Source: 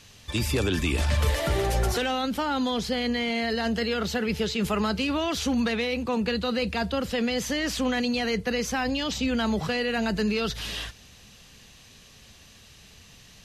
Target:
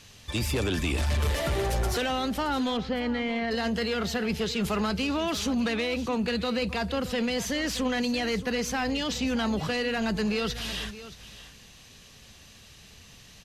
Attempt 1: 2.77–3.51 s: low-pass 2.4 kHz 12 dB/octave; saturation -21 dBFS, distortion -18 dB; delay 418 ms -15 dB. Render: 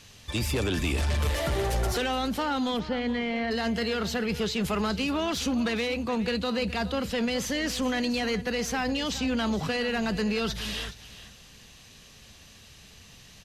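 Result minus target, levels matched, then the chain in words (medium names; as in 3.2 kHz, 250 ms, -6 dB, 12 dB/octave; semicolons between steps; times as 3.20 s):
echo 204 ms early
2.77–3.51 s: low-pass 2.4 kHz 12 dB/octave; saturation -21 dBFS, distortion -18 dB; delay 622 ms -15 dB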